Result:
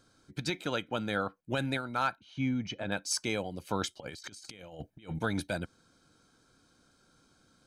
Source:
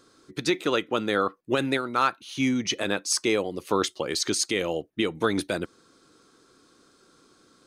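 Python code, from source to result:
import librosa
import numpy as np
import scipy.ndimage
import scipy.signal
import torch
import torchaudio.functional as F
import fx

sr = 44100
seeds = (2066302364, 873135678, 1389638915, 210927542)

y = fx.low_shelf(x, sr, hz=190.0, db=8.0)
y = y + 0.57 * np.pad(y, (int(1.3 * sr / 1000.0), 0))[:len(y)]
y = fx.spacing_loss(y, sr, db_at_10k=23, at=(2.15, 2.92))
y = fx.over_compress(y, sr, threshold_db=-34.0, ratio=-0.5, at=(4.0, 5.19))
y = F.gain(torch.from_numpy(y), -8.0).numpy()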